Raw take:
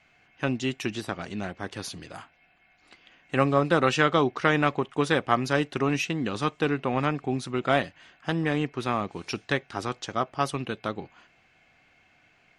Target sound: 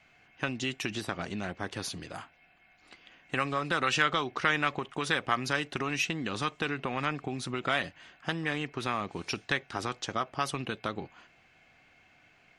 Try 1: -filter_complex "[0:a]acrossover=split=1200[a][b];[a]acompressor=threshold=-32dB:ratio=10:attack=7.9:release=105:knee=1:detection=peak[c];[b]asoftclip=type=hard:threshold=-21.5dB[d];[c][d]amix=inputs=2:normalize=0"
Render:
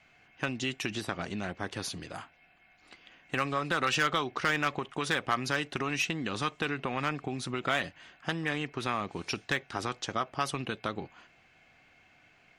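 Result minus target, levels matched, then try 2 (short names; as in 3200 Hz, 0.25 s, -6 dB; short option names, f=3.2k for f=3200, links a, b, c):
hard clip: distortion +30 dB
-filter_complex "[0:a]acrossover=split=1200[a][b];[a]acompressor=threshold=-32dB:ratio=10:attack=7.9:release=105:knee=1:detection=peak[c];[b]asoftclip=type=hard:threshold=-12.5dB[d];[c][d]amix=inputs=2:normalize=0"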